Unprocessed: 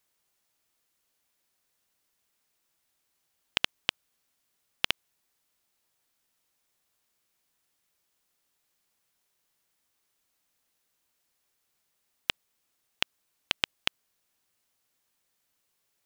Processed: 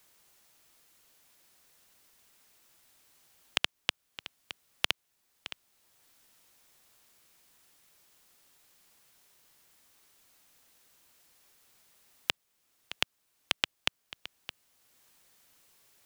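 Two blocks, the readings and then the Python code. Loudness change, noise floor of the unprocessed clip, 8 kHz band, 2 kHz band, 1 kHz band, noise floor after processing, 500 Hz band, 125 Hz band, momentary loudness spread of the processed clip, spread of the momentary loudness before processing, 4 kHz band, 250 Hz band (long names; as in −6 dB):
−3.0 dB, −77 dBFS, +2.0 dB, −1.0 dB, 0.0 dB, −77 dBFS, 0.0 dB, −2.5 dB, 16 LU, 4 LU, −1.0 dB, −1.0 dB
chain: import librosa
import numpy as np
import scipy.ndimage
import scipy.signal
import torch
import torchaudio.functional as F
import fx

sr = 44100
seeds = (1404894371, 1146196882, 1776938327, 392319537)

y = x + 10.0 ** (-19.0 / 20.0) * np.pad(x, (int(617 * sr / 1000.0), 0))[:len(x)]
y = fx.band_squash(y, sr, depth_pct=40)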